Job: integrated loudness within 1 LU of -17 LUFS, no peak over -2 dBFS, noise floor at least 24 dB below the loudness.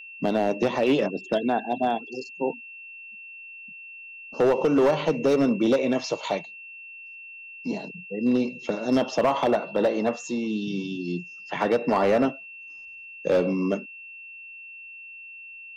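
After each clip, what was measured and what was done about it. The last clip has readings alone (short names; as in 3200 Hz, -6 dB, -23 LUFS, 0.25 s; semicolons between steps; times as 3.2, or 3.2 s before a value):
clipped 1.2%; flat tops at -15.0 dBFS; steady tone 2700 Hz; tone level -40 dBFS; loudness -25.0 LUFS; peak -15.0 dBFS; loudness target -17.0 LUFS
-> clip repair -15 dBFS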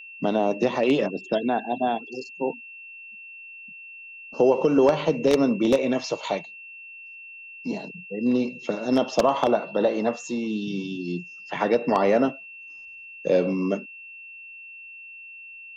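clipped 0.0%; steady tone 2700 Hz; tone level -40 dBFS
-> notch 2700 Hz, Q 30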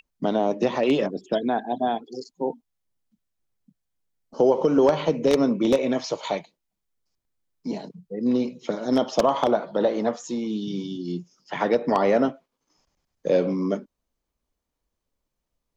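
steady tone none; loudness -24.0 LUFS; peak -6.0 dBFS; loudness target -17.0 LUFS
-> gain +7 dB; limiter -2 dBFS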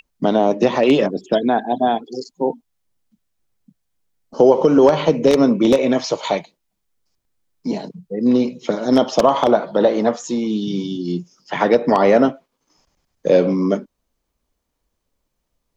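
loudness -17.5 LUFS; peak -2.0 dBFS; noise floor -75 dBFS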